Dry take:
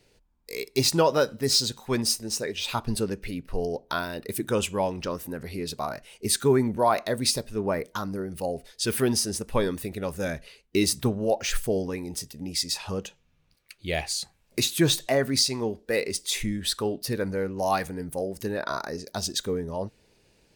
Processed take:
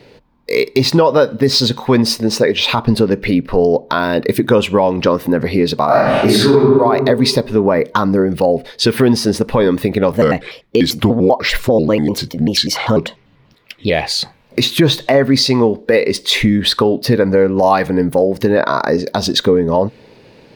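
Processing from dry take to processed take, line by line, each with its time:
5.86–6.55 reverb throw, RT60 1.2 s, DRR -11.5 dB
10.12–13.9 shaped vibrato square 5.1 Hz, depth 250 cents
whole clip: graphic EQ 125/250/500/1000/2000/4000/8000 Hz +11/+11/+11/+11/+8/+9/-7 dB; compressor 3:1, threshold -16 dBFS; maximiser +8 dB; gain -1 dB

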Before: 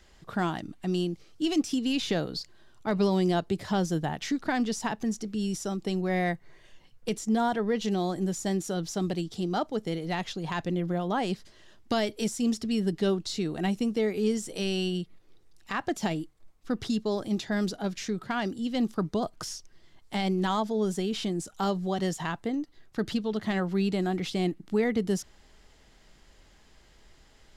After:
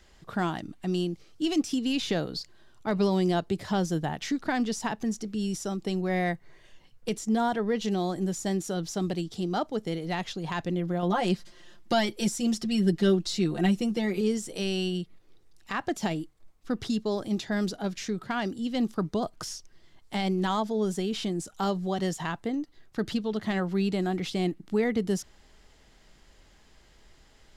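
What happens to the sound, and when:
11.02–14.21 comb 5.7 ms, depth 86%

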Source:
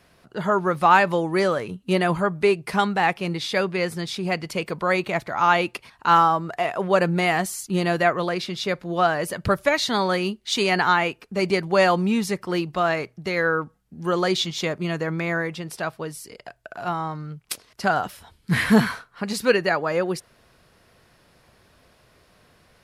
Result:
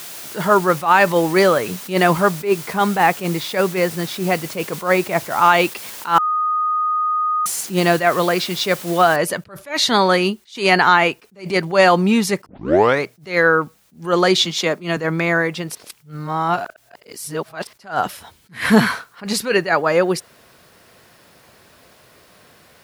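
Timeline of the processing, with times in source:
2.41–5.42 high shelf 2600 Hz -10 dB
6.18–7.46 bleep 1240 Hz -24 dBFS
9.16 noise floor step -42 dB -66 dB
12.46 tape start 0.57 s
14.45–14.97 steep high-pass 160 Hz
15.75–17.67 reverse
whole clip: HPF 170 Hz 6 dB/oct; maximiser +9 dB; attack slew limiter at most 190 dB/s; gain -1 dB

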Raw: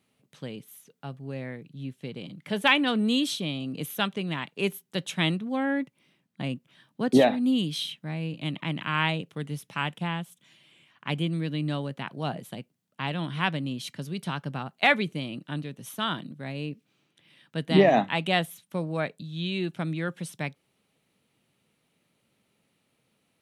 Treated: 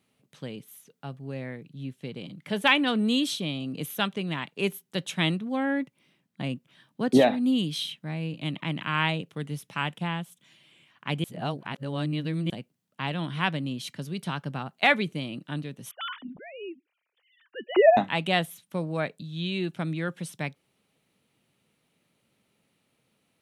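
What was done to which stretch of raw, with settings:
11.24–12.5 reverse
15.91–17.97 sine-wave speech

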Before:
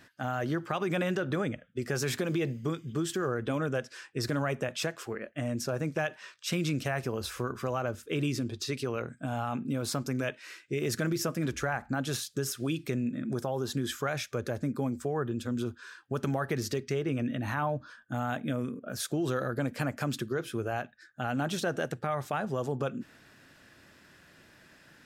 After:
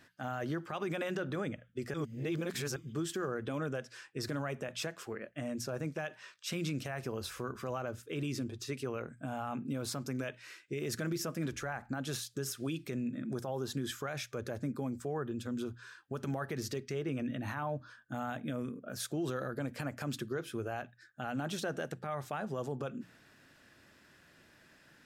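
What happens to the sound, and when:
1.94–2.76 reverse
8.44–9.67 bell 4300 Hz -6 dB
whole clip: notches 60/120/180 Hz; limiter -22 dBFS; gain -4.5 dB

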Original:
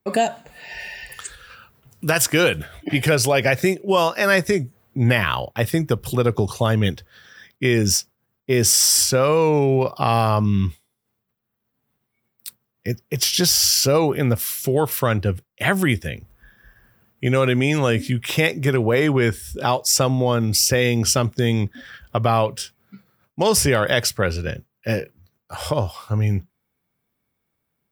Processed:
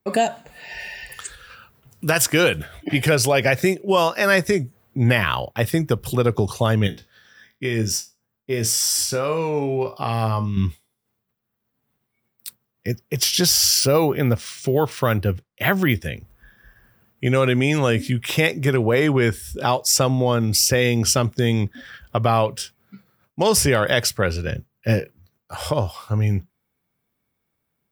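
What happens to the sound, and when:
6.87–10.57 resonator 56 Hz, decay 0.24 s, mix 80%
13.79–16.02 careless resampling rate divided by 3×, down filtered, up hold
24.52–25 low shelf 190 Hz +7.5 dB

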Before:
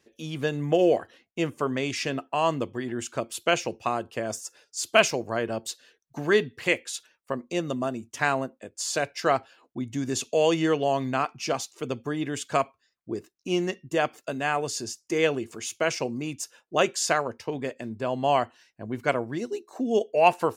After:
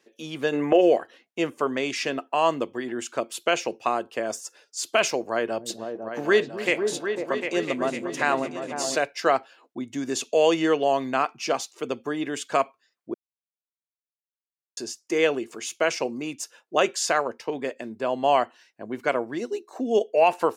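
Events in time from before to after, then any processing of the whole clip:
0.53–0.81 spectral gain 290–3000 Hz +10 dB
5.2–8.96 repeats that get brighter 0.25 s, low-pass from 200 Hz, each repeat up 2 oct, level -3 dB
13.14–14.77 mute
whole clip: HPF 270 Hz 12 dB/oct; high shelf 5500 Hz -4.5 dB; maximiser +10.5 dB; gain -7.5 dB

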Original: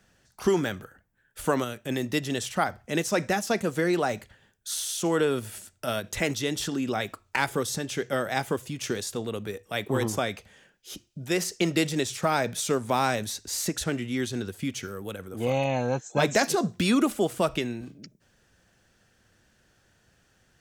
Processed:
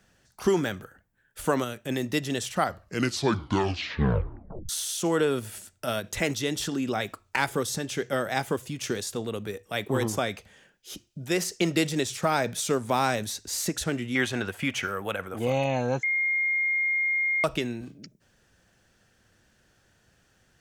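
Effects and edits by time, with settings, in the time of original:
2.54 tape stop 2.15 s
14.15–15.39 band shelf 1300 Hz +11 dB 2.7 oct
16.03–17.44 bleep 2130 Hz -22.5 dBFS

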